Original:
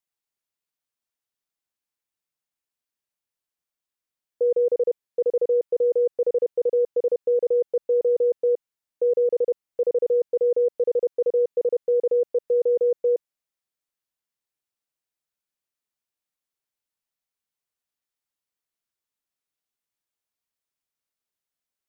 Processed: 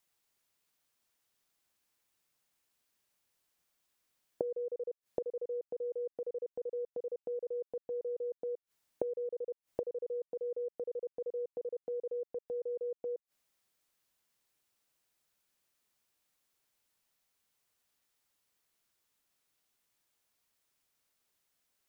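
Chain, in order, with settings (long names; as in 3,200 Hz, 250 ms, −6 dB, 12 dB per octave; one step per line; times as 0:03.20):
gate with flip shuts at −29 dBFS, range −26 dB
level +9 dB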